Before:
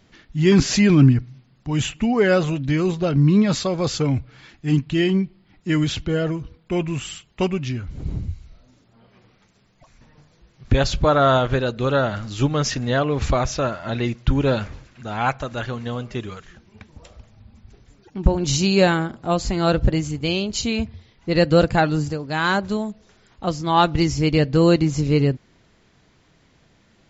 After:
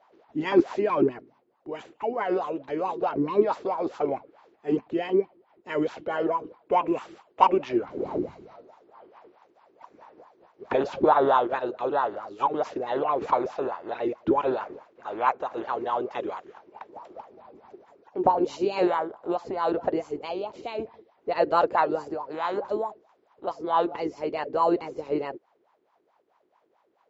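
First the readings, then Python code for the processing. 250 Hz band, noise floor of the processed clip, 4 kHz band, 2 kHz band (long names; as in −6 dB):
−9.5 dB, −68 dBFS, −16.5 dB, −10.5 dB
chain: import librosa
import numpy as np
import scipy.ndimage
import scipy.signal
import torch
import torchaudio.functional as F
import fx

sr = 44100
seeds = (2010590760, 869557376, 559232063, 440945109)

y = fx.spec_clip(x, sr, under_db=20)
y = fx.rider(y, sr, range_db=10, speed_s=2.0)
y = fx.wah_lfo(y, sr, hz=4.6, low_hz=340.0, high_hz=1000.0, q=7.2)
y = F.gain(torch.from_numpy(y), 5.5).numpy()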